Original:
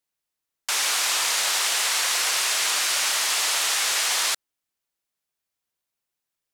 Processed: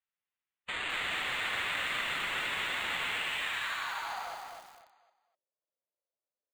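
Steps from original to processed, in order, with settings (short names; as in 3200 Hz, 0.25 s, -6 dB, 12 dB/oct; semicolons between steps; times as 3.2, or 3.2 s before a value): HPF 72 Hz 24 dB/oct; bell 5500 Hz -12 dB 0.47 oct; notches 50/100/150/200/250/300/350/400 Hz; in parallel at -1 dB: limiter -21 dBFS, peak gain reduction 8 dB; on the sum: band-pass sweep 3500 Hz -> 530 Hz, 3.07–4.44; formant-preserving pitch shift +6 st; sample-and-hold 8×; air absorption 120 m; on a send: feedback echo 0.251 s, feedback 30%, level -5 dB; on the sum: lo-fi delay 0.209 s, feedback 80%, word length 6-bit, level -12.5 dB; gain -4.5 dB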